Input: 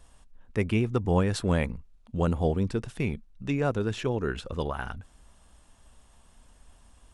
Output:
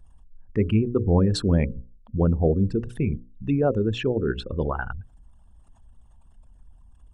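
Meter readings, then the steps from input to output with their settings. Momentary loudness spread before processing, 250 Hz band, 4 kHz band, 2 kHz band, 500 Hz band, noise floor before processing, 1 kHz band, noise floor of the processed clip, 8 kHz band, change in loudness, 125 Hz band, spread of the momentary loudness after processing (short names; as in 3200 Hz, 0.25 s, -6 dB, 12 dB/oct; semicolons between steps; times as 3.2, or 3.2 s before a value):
11 LU, +5.5 dB, +4.0 dB, -0.5 dB, +4.5 dB, -58 dBFS, 0.0 dB, -54 dBFS, n/a, +4.5 dB, +5.0 dB, 11 LU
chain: formant sharpening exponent 2; notches 60/120/180/240/300/360/420/480/540 Hz; gain +5.5 dB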